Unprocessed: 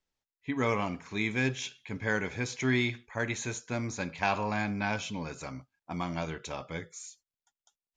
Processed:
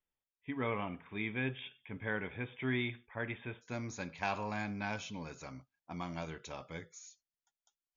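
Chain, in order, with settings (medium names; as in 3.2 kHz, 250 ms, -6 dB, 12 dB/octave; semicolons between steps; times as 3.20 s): brick-wall FIR low-pass 3.7 kHz, from 3.61 s 7.1 kHz; trim -7 dB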